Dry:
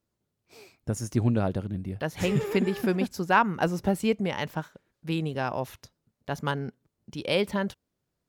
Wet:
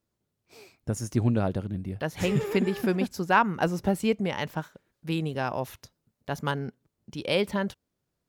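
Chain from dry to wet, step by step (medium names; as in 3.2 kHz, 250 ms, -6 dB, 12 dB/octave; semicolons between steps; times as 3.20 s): 4.57–6.66 s: treble shelf 10 kHz +4 dB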